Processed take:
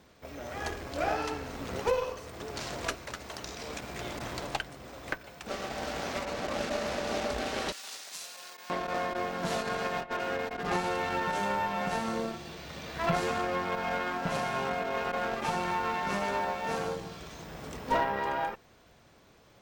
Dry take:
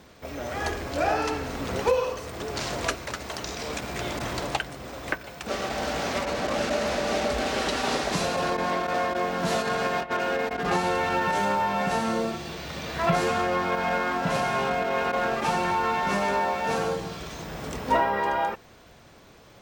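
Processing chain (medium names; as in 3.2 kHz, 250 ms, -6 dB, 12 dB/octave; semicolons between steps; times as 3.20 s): Chebyshev shaper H 4 -19 dB, 7 -30 dB, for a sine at -11.5 dBFS; 7.72–8.70 s: differentiator; trim -5.5 dB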